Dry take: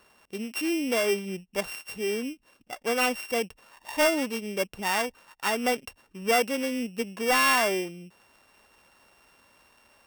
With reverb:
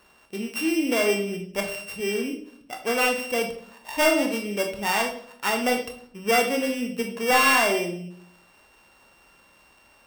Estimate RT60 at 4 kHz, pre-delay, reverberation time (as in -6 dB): 0.50 s, 21 ms, 0.60 s